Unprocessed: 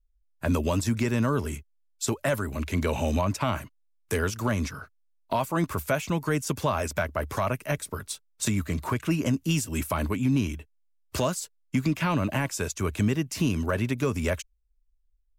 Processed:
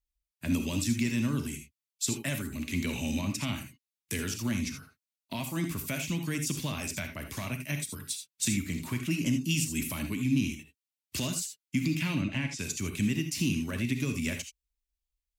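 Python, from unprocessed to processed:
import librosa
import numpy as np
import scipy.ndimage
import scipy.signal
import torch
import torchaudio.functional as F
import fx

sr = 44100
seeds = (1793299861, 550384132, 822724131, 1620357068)

y = fx.highpass(x, sr, hz=200.0, slope=6)
y = fx.band_shelf(y, sr, hz=780.0, db=-15.0, octaves=2.3)
y = fx.lowpass(y, sr, hz=4600.0, slope=12, at=(12.15, 12.59))
y = fx.rev_gated(y, sr, seeds[0], gate_ms=100, shape='rising', drr_db=6.0)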